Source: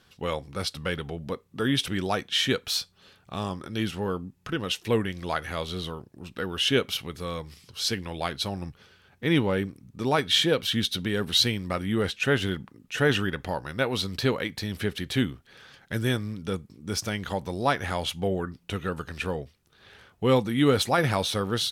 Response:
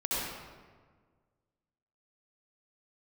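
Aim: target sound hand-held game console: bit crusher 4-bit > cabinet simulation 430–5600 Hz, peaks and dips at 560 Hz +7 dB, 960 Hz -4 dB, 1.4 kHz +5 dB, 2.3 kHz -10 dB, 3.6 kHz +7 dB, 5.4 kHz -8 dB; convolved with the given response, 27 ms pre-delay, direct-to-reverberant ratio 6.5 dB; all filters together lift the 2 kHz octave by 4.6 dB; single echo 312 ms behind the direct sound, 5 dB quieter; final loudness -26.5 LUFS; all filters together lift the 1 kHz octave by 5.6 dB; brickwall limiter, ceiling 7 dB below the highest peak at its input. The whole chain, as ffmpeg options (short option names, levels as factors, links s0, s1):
-filter_complex "[0:a]equalizer=f=1000:t=o:g=6,equalizer=f=2000:t=o:g=3.5,alimiter=limit=0.237:level=0:latency=1,aecho=1:1:312:0.562,asplit=2[s0][s1];[1:a]atrim=start_sample=2205,adelay=27[s2];[s1][s2]afir=irnorm=-1:irlink=0,volume=0.188[s3];[s0][s3]amix=inputs=2:normalize=0,acrusher=bits=3:mix=0:aa=0.000001,highpass=430,equalizer=f=560:t=q:w=4:g=7,equalizer=f=960:t=q:w=4:g=-4,equalizer=f=1400:t=q:w=4:g=5,equalizer=f=2300:t=q:w=4:g=-10,equalizer=f=3600:t=q:w=4:g=7,equalizer=f=5400:t=q:w=4:g=-8,lowpass=f=5600:w=0.5412,lowpass=f=5600:w=1.3066,volume=0.794"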